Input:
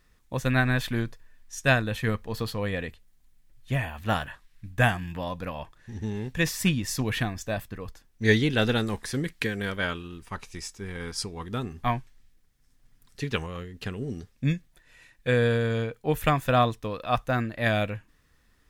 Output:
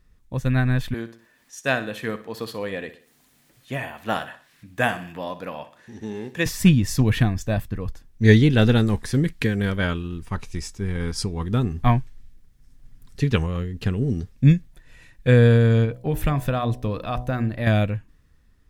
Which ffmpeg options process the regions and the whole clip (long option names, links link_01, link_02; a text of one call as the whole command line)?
ffmpeg -i in.wav -filter_complex "[0:a]asettb=1/sr,asplit=3[link_01][link_02][link_03];[link_01]atrim=end=0.944[link_04];[link_02]atrim=start=0.94:end=6.46,asetpts=PTS-STARTPTS,afade=type=in:duration=0.004:curve=qsin,afade=type=out:start_time=5.516:duration=0.004:curve=qsin,highpass=330,acompressor=mode=upward:threshold=-47dB:ratio=2.5:attack=3.2:release=140:knee=2.83:detection=peak,aecho=1:1:61|122|183|244:0.2|0.0858|0.0369|0.0159,atrim=end_sample=243432[link_05];[link_03]atrim=start=6.456[link_06];[link_04][link_05]acrossfade=duration=0.004:curve1=hsin:curve2=qsin[link_07];[link_07][link_06]acrossfade=duration=0.004:curve1=qsin:curve2=hsin,asettb=1/sr,asplit=3[link_08][link_09][link_10];[link_08]atrim=end=15.854[link_11];[link_09]atrim=start=15.85:end=17.67,asetpts=PTS-STARTPTS,afade=type=in:duration=0.004:curve=qsin,afade=type=out:start_time=1.816:duration=0.004:curve=qsin,acompressor=threshold=-28dB:ratio=2.5:attack=3.2:release=140:knee=1:detection=peak,bandreject=frequency=6800:width=16,bandreject=frequency=61.7:width_type=h:width=4,bandreject=frequency=123.4:width_type=h:width=4,bandreject=frequency=185.1:width_type=h:width=4,bandreject=frequency=246.8:width_type=h:width=4,bandreject=frequency=308.5:width_type=h:width=4,bandreject=frequency=370.2:width_type=h:width=4,bandreject=frequency=431.9:width_type=h:width=4,bandreject=frequency=493.6:width_type=h:width=4,bandreject=frequency=555.3:width_type=h:width=4,bandreject=frequency=617:width_type=h:width=4,bandreject=frequency=678.7:width_type=h:width=4,bandreject=frequency=740.4:width_type=h:width=4,bandreject=frequency=802.1:width_type=h:width=4,bandreject=frequency=863.8:width_type=h:width=4,bandreject=frequency=925.5:width_type=h:width=4,bandreject=frequency=987.2:width_type=h:width=4,bandreject=frequency=1048.9:width_type=h:width=4[link_12];[link_10]atrim=start=17.666[link_13];[link_11][link_12]acrossfade=duration=0.004:curve1=hsin:curve2=qsin[link_14];[link_14][link_13]acrossfade=duration=0.004:curve1=qsin:curve2=hsin,dynaudnorm=framelen=290:gausssize=9:maxgain=7dB,lowshelf=frequency=310:gain=11.5,volume=-4.5dB" out.wav